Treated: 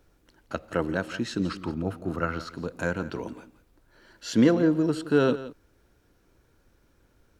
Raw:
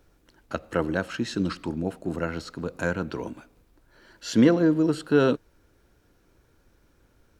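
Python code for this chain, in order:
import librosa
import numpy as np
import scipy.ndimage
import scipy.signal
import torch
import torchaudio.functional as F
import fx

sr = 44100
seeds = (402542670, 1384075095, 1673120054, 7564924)

p1 = fx.graphic_eq_31(x, sr, hz=(100, 1250, 8000), db=(9, 11, -8), at=(1.61, 2.49))
p2 = p1 + fx.echo_single(p1, sr, ms=171, db=-15.5, dry=0)
y = F.gain(torch.from_numpy(p2), -1.5).numpy()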